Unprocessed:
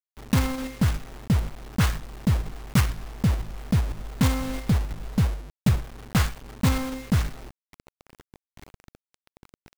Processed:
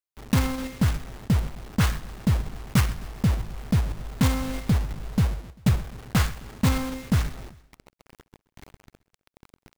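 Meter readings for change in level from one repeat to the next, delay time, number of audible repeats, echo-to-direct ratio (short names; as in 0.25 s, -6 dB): -4.5 dB, 0.131 s, 3, -19.5 dB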